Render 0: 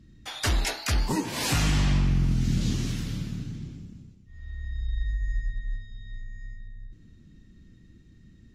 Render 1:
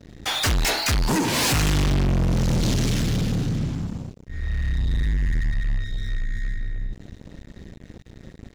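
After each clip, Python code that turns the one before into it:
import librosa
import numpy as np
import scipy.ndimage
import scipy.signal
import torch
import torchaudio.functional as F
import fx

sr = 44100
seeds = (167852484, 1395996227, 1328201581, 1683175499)

y = fx.leveller(x, sr, passes=5)
y = F.gain(torch.from_numpy(y), -4.0).numpy()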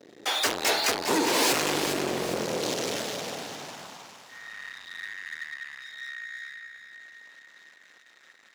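y = fx.echo_alternate(x, sr, ms=203, hz=1100.0, feedback_pct=71, wet_db=-5.5)
y = fx.filter_sweep_highpass(y, sr, from_hz=410.0, to_hz=1400.0, start_s=2.42, end_s=5.01, q=1.6)
y = F.gain(torch.from_numpy(y), -2.5).numpy()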